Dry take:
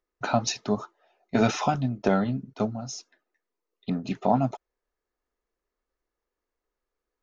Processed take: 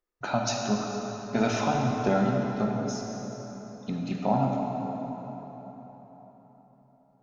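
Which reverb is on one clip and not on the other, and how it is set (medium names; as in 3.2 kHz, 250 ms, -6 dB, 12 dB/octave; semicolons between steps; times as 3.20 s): plate-style reverb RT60 4.4 s, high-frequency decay 0.65×, DRR -1 dB; trim -4 dB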